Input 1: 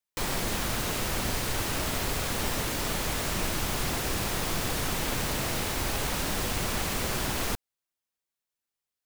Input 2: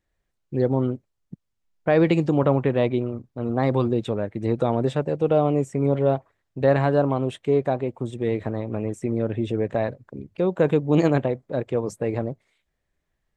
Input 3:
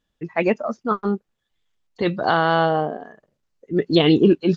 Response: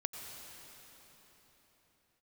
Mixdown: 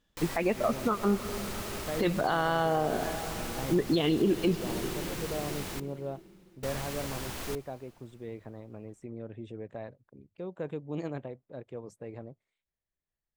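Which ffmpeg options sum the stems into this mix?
-filter_complex "[0:a]volume=-10dB,asplit=3[link_01][link_02][link_03];[link_01]atrim=end=5.8,asetpts=PTS-STARTPTS,afade=type=out:start_time=5.796:duration=0.004:curve=hsin[link_04];[link_02]atrim=start=5.8:end=6.63,asetpts=PTS-STARTPTS,volume=0[link_05];[link_03]atrim=start=6.63,asetpts=PTS-STARTPTS,afade=type=in:duration=0.004:curve=hsin[link_06];[link_04][link_05][link_06]concat=n=3:v=0:a=1,asplit=2[link_07][link_08];[link_08]volume=-14.5dB[link_09];[1:a]volume=-17dB[link_10];[2:a]acompressor=threshold=-16dB:ratio=6,volume=-0.5dB,asplit=2[link_11][link_12];[link_12]volume=-9dB[link_13];[3:a]atrim=start_sample=2205[link_14];[link_09][link_13]amix=inputs=2:normalize=0[link_15];[link_15][link_14]afir=irnorm=-1:irlink=0[link_16];[link_07][link_10][link_11][link_16]amix=inputs=4:normalize=0,alimiter=limit=-17dB:level=0:latency=1:release=233"

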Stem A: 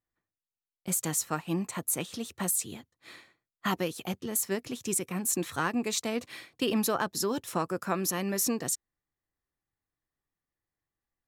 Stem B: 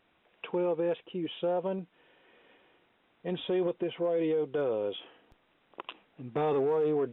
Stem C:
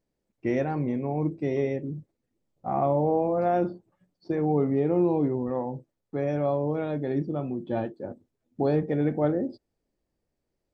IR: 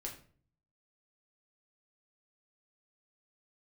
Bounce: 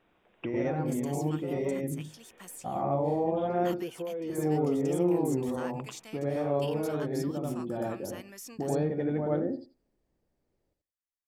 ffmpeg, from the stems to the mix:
-filter_complex "[0:a]bandreject=frequency=4000:width=6.9,acrossover=split=4200[link_01][link_02];[link_02]acompressor=threshold=-35dB:ratio=4:attack=1:release=60[link_03];[link_01][link_03]amix=inputs=2:normalize=0,tiltshelf=frequency=1300:gain=-6.5,volume=-14dB[link_04];[1:a]acontrast=90,volume=-5.5dB[link_05];[2:a]volume=3dB,asplit=2[link_06][link_07];[link_07]volume=-8.5dB[link_08];[link_05][link_06]amix=inputs=2:normalize=0,highshelf=frequency=2800:gain=-10,acompressor=threshold=-37dB:ratio=2.5,volume=0dB[link_09];[link_08]aecho=0:1:85|170|255:1|0.15|0.0225[link_10];[link_04][link_09][link_10]amix=inputs=3:normalize=0"

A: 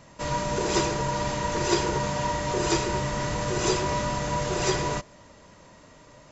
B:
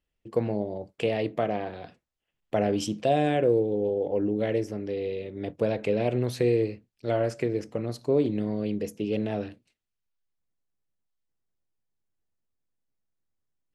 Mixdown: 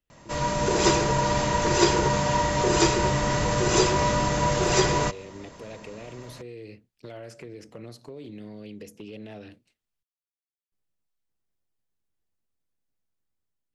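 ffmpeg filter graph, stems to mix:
ffmpeg -i stem1.wav -i stem2.wav -filter_complex "[0:a]adelay=100,volume=0dB[link_01];[1:a]alimiter=level_in=0.5dB:limit=-24dB:level=0:latency=1:release=92,volume=-0.5dB,acrossover=split=98|1700[link_02][link_03][link_04];[link_02]acompressor=threshold=-59dB:ratio=4[link_05];[link_03]acompressor=threshold=-40dB:ratio=4[link_06];[link_04]acompressor=threshold=-49dB:ratio=4[link_07];[link_05][link_06][link_07]amix=inputs=3:normalize=0,asoftclip=type=hard:threshold=-33.5dB,volume=-3.5dB,asplit=3[link_08][link_09][link_10];[link_08]atrim=end=10.03,asetpts=PTS-STARTPTS,afade=type=out:start_time=10.026:duration=0.004:curve=hsin[link_11];[link_09]atrim=start=10.03:end=10.72,asetpts=PTS-STARTPTS,volume=0[link_12];[link_10]atrim=start=10.72,asetpts=PTS-STARTPTS,afade=type=in:duration=0.004:curve=hsin[link_13];[link_11][link_12][link_13]concat=n=3:v=0:a=1[link_14];[link_01][link_14]amix=inputs=2:normalize=0,dynaudnorm=framelen=220:gausssize=5:maxgain=4dB" out.wav

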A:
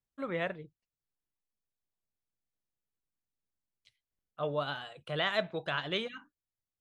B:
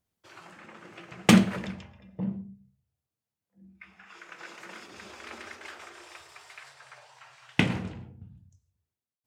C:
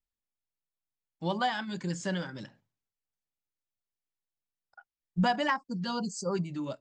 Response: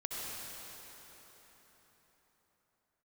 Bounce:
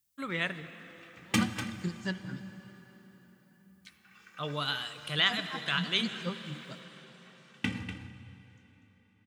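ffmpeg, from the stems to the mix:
-filter_complex "[0:a]crystalizer=i=3.5:c=0,volume=2dB,asplit=2[link_01][link_02];[link_02]volume=-12.5dB[link_03];[1:a]asplit=2[link_04][link_05];[link_05]adelay=2.3,afreqshift=0.3[link_06];[link_04][link_06]amix=inputs=2:normalize=1,adelay=50,volume=-5dB,asplit=3[link_07][link_08][link_09];[link_08]volume=-13dB[link_10];[link_09]volume=-9dB[link_11];[2:a]aeval=exprs='val(0)*pow(10,-32*(0.5-0.5*cos(2*PI*4.3*n/s))/20)':channel_layout=same,volume=2dB,asplit=3[link_12][link_13][link_14];[link_13]volume=-11dB[link_15];[link_14]apad=whole_len=300250[link_16];[link_01][link_16]sidechaincompress=threshold=-41dB:ratio=8:attack=6.4:release=217[link_17];[3:a]atrim=start_sample=2205[link_18];[link_03][link_10][link_15]amix=inputs=3:normalize=0[link_19];[link_19][link_18]afir=irnorm=-1:irlink=0[link_20];[link_11]aecho=0:1:244:1[link_21];[link_17][link_07][link_12][link_20][link_21]amix=inputs=5:normalize=0,highpass=62,equalizer=frequency=600:width=1.2:gain=-11.5"

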